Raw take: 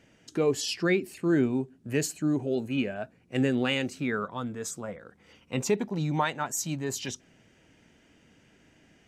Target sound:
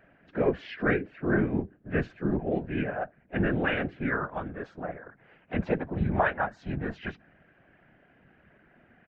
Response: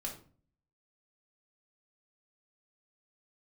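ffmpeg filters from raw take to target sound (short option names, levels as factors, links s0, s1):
-filter_complex "[0:a]asplit=4[s0][s1][s2][s3];[s1]asetrate=29433,aresample=44100,atempo=1.49831,volume=0.355[s4];[s2]asetrate=37084,aresample=44100,atempo=1.18921,volume=0.501[s5];[s3]asetrate=55563,aresample=44100,atempo=0.793701,volume=0.178[s6];[s0][s4][s5][s6]amix=inputs=4:normalize=0,highpass=130,equalizer=f=140:t=q:w=4:g=9,equalizer=f=670:t=q:w=4:g=10,equalizer=f=1600:t=q:w=4:g=10,lowpass=f=2500:w=0.5412,lowpass=f=2500:w=1.3066,afftfilt=real='hypot(re,im)*cos(2*PI*random(0))':imag='hypot(re,im)*sin(2*PI*random(1))':win_size=512:overlap=0.75,volume=1.33"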